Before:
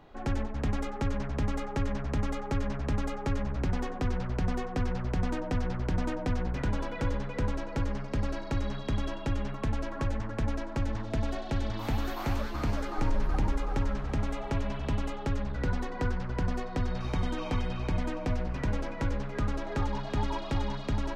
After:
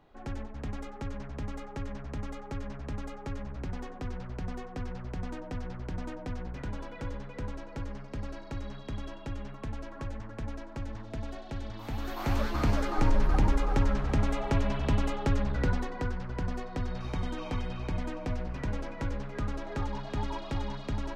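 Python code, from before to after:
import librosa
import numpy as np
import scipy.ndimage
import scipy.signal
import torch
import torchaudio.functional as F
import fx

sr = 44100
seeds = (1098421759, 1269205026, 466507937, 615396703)

y = fx.gain(x, sr, db=fx.line((11.86, -7.0), (12.43, 3.5), (15.57, 3.5), (16.08, -3.0)))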